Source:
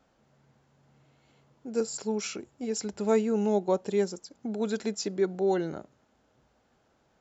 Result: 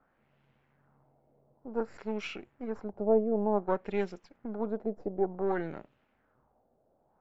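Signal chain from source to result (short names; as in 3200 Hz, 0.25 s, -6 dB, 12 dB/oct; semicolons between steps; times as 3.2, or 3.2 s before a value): half-wave gain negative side -7 dB; LFO low-pass sine 0.55 Hz 600–2800 Hz; gain -3 dB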